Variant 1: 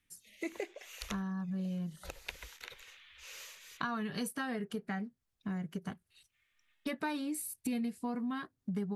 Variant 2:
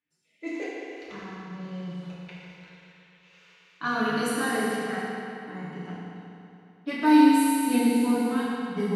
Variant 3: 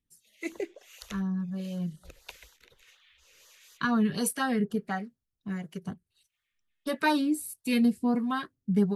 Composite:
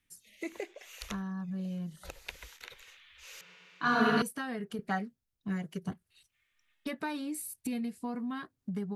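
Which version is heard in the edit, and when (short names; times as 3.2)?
1
3.41–4.22 from 2
4.79–5.92 from 3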